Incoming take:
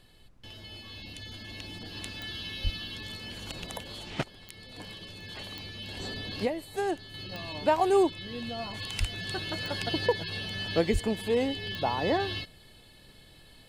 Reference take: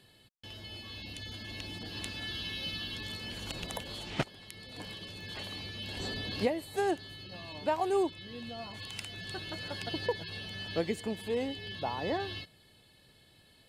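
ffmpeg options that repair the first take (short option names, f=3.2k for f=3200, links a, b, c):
-filter_complex "[0:a]adeclick=t=4,asplit=3[a][b][c];[a]afade=t=out:st=2.63:d=0.02[d];[b]highpass=f=140:w=0.5412,highpass=f=140:w=1.3066,afade=t=in:st=2.63:d=0.02,afade=t=out:st=2.75:d=0.02[e];[c]afade=t=in:st=2.75:d=0.02[f];[d][e][f]amix=inputs=3:normalize=0,asplit=3[g][h][i];[g]afade=t=out:st=8.99:d=0.02[j];[h]highpass=f=140:w=0.5412,highpass=f=140:w=1.3066,afade=t=in:st=8.99:d=0.02,afade=t=out:st=9.11:d=0.02[k];[i]afade=t=in:st=9.11:d=0.02[l];[j][k][l]amix=inputs=3:normalize=0,asplit=3[m][n][o];[m]afade=t=out:st=10.92:d=0.02[p];[n]highpass=f=140:w=0.5412,highpass=f=140:w=1.3066,afade=t=in:st=10.92:d=0.02,afade=t=out:st=11.04:d=0.02[q];[o]afade=t=in:st=11.04:d=0.02[r];[p][q][r]amix=inputs=3:normalize=0,agate=range=-21dB:threshold=-45dB,asetnsamples=n=441:p=0,asendcmd='7.14 volume volume -6dB',volume=0dB"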